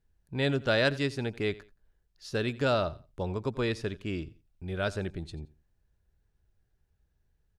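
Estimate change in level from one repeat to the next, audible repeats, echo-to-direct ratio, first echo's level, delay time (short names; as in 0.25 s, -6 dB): -12.0 dB, 2, -19.5 dB, -20.0 dB, 87 ms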